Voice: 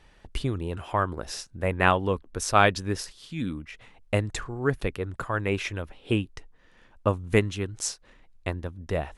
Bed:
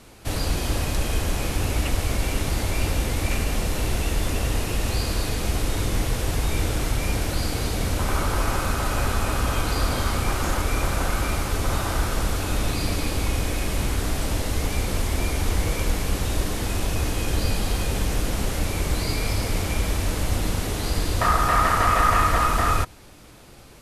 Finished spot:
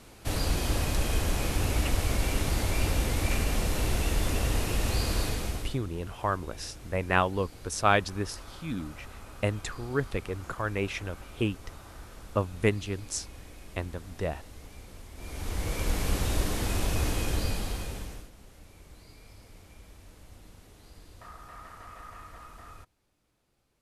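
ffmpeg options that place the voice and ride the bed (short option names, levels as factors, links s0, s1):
-filter_complex "[0:a]adelay=5300,volume=0.668[s0];[1:a]volume=5.96,afade=t=out:st=5.22:d=0.57:silence=0.112202,afade=t=in:st=15.15:d=0.93:silence=0.112202,afade=t=out:st=17.1:d=1.2:silence=0.0630957[s1];[s0][s1]amix=inputs=2:normalize=0"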